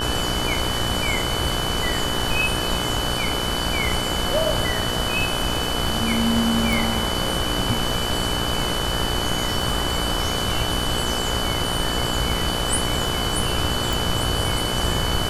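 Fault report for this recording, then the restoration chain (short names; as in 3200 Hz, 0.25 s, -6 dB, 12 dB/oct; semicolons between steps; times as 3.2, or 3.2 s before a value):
buzz 60 Hz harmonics 28 -28 dBFS
crackle 22/s -28 dBFS
tone 3000 Hz -27 dBFS
6.73 pop
13.93 pop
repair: de-click; de-hum 60 Hz, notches 28; notch 3000 Hz, Q 30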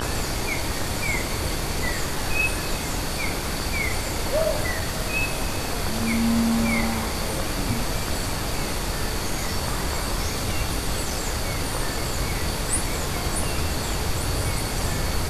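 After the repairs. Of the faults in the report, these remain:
none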